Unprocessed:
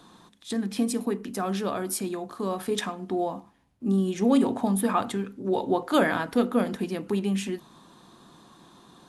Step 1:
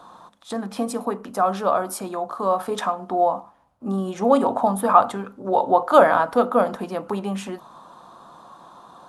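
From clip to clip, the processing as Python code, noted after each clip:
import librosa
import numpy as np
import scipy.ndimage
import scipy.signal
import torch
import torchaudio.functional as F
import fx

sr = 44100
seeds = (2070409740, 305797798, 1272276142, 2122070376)

y = fx.band_shelf(x, sr, hz=850.0, db=13.5, octaves=1.7)
y = F.gain(torch.from_numpy(y), -1.5).numpy()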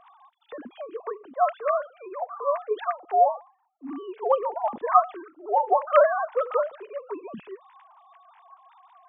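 y = fx.sine_speech(x, sr)
y = F.gain(torch.from_numpy(y), -4.5).numpy()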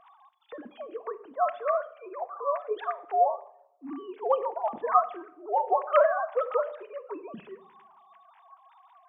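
y = fx.room_shoebox(x, sr, seeds[0], volume_m3=2100.0, walls='furnished', distance_m=0.64)
y = F.gain(torch.from_numpy(y), -3.0).numpy()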